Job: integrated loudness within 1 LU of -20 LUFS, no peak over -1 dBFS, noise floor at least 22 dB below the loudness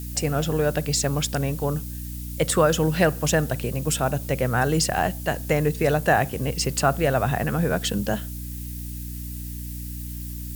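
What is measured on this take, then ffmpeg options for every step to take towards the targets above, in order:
hum 60 Hz; highest harmonic 300 Hz; hum level -31 dBFS; noise floor -33 dBFS; noise floor target -47 dBFS; loudness -24.5 LUFS; peak level -6.5 dBFS; loudness target -20.0 LUFS
-> -af "bandreject=f=60:t=h:w=4,bandreject=f=120:t=h:w=4,bandreject=f=180:t=h:w=4,bandreject=f=240:t=h:w=4,bandreject=f=300:t=h:w=4"
-af "afftdn=nr=14:nf=-33"
-af "volume=1.68"

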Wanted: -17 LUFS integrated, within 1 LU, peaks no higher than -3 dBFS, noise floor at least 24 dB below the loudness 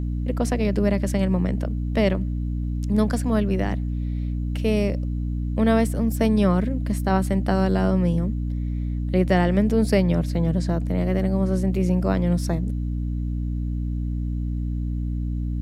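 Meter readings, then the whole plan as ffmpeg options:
hum 60 Hz; highest harmonic 300 Hz; hum level -23 dBFS; loudness -23.5 LUFS; peak level -6.0 dBFS; loudness target -17.0 LUFS
-> -af "bandreject=f=60:t=h:w=4,bandreject=f=120:t=h:w=4,bandreject=f=180:t=h:w=4,bandreject=f=240:t=h:w=4,bandreject=f=300:t=h:w=4"
-af "volume=2.11,alimiter=limit=0.708:level=0:latency=1"

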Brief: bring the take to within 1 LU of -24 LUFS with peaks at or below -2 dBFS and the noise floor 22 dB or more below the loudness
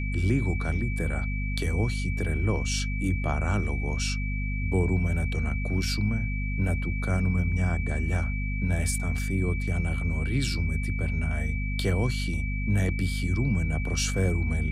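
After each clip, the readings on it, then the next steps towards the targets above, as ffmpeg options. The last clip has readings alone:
hum 50 Hz; highest harmonic 250 Hz; hum level -27 dBFS; steady tone 2.3 kHz; tone level -36 dBFS; loudness -28.0 LUFS; peak level -13.0 dBFS; loudness target -24.0 LUFS
-> -af "bandreject=f=50:t=h:w=4,bandreject=f=100:t=h:w=4,bandreject=f=150:t=h:w=4,bandreject=f=200:t=h:w=4,bandreject=f=250:t=h:w=4"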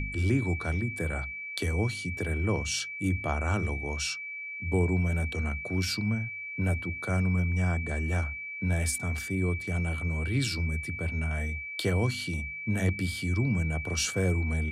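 hum not found; steady tone 2.3 kHz; tone level -36 dBFS
-> -af "bandreject=f=2300:w=30"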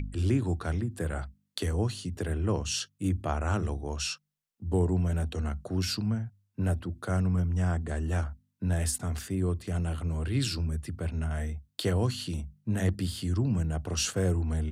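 steady tone not found; loudness -31.0 LUFS; peak level -14.0 dBFS; loudness target -24.0 LUFS
-> -af "volume=2.24"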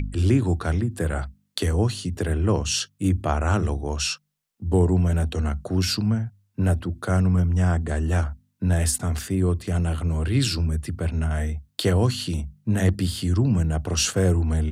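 loudness -24.0 LUFS; peak level -7.0 dBFS; noise floor -70 dBFS

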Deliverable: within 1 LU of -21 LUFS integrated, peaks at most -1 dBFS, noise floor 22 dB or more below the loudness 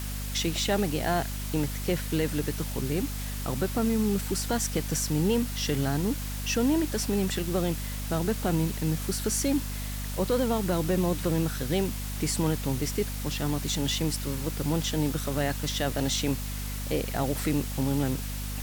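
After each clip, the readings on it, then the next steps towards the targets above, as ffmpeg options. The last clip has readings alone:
hum 50 Hz; highest harmonic 250 Hz; hum level -32 dBFS; noise floor -34 dBFS; noise floor target -51 dBFS; loudness -28.5 LUFS; peak level -14.5 dBFS; loudness target -21.0 LUFS
-> -af "bandreject=f=50:t=h:w=6,bandreject=f=100:t=h:w=6,bandreject=f=150:t=h:w=6,bandreject=f=200:t=h:w=6,bandreject=f=250:t=h:w=6"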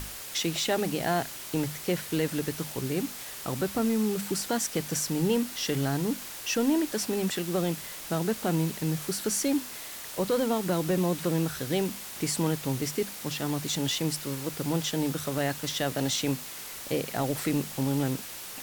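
hum not found; noise floor -41 dBFS; noise floor target -52 dBFS
-> -af "afftdn=nr=11:nf=-41"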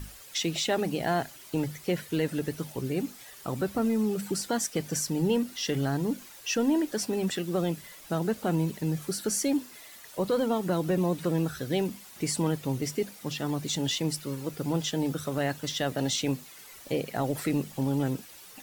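noise floor -49 dBFS; noise floor target -52 dBFS
-> -af "afftdn=nr=6:nf=-49"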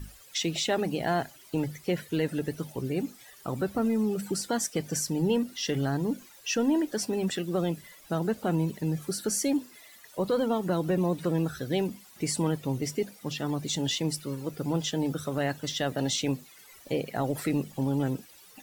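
noise floor -53 dBFS; loudness -30.0 LUFS; peak level -15.5 dBFS; loudness target -21.0 LUFS
-> -af "volume=2.82"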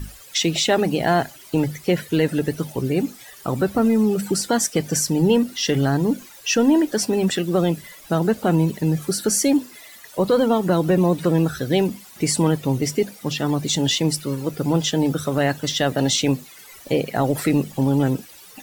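loudness -21.0 LUFS; peak level -6.5 dBFS; noise floor -44 dBFS

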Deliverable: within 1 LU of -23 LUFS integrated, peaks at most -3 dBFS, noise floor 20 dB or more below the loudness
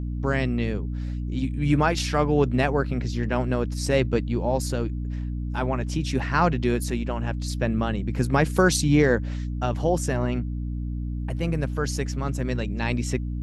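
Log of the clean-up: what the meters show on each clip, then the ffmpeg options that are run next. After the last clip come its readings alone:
hum 60 Hz; highest harmonic 300 Hz; hum level -26 dBFS; loudness -25.0 LUFS; peak level -6.0 dBFS; loudness target -23.0 LUFS
-> -af "bandreject=f=60:t=h:w=4,bandreject=f=120:t=h:w=4,bandreject=f=180:t=h:w=4,bandreject=f=240:t=h:w=4,bandreject=f=300:t=h:w=4"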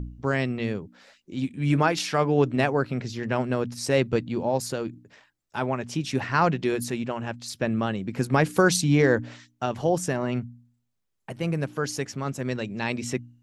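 hum not found; loudness -26.0 LUFS; peak level -7.0 dBFS; loudness target -23.0 LUFS
-> -af "volume=1.41"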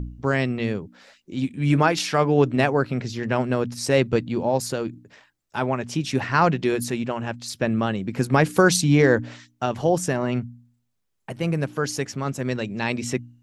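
loudness -23.0 LUFS; peak level -4.0 dBFS; noise floor -73 dBFS

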